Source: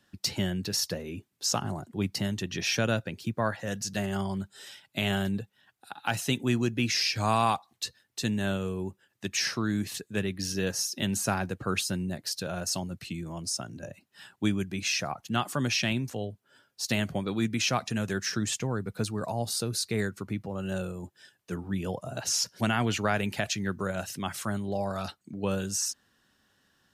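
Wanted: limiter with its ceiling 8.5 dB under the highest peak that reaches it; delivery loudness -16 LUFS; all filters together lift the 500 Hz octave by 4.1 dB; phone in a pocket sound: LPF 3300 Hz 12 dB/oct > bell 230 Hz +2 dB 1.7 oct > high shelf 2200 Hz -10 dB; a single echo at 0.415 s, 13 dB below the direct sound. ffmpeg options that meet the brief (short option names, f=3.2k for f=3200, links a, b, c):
-af "equalizer=f=500:t=o:g=5,alimiter=limit=-19dB:level=0:latency=1,lowpass=3.3k,equalizer=f=230:t=o:w=1.7:g=2,highshelf=f=2.2k:g=-10,aecho=1:1:415:0.224,volume=16dB"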